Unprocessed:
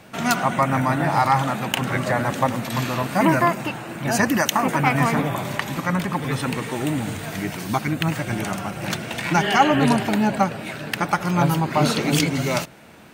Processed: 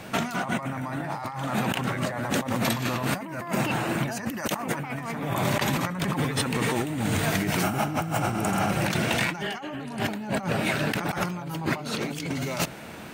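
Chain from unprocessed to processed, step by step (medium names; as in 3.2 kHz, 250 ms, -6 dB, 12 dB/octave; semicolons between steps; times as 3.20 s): spectral replace 7.66–8.64 s, 580–6600 Hz after; compressor with a negative ratio -29 dBFS, ratio -1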